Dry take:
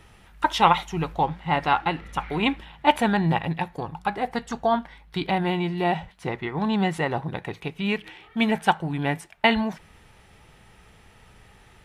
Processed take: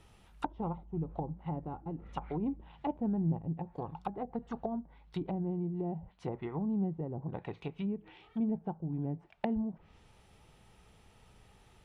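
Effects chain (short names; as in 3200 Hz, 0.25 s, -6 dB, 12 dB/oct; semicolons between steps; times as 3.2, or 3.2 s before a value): bell 1800 Hz -7 dB 0.83 oct; treble ducked by the level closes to 350 Hz, closed at -22.5 dBFS; gain -7.5 dB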